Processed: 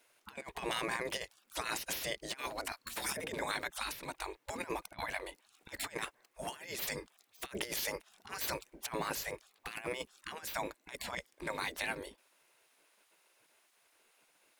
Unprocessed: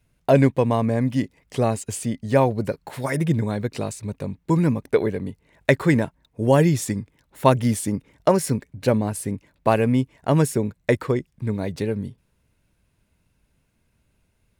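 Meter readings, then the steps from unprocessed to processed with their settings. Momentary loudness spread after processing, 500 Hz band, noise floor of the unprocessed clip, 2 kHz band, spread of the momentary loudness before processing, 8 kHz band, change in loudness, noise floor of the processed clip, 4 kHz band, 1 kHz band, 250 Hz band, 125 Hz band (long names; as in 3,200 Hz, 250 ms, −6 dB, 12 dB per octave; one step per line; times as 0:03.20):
9 LU, −21.0 dB, −68 dBFS, −8.0 dB, 11 LU, −9.0 dB, −17.0 dB, −74 dBFS, −2.0 dB, −14.0 dB, −26.5 dB, −31.5 dB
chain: gate on every frequency bin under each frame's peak −20 dB weak
compressor whose output falls as the input rises −41 dBFS, ratio −0.5
level +2.5 dB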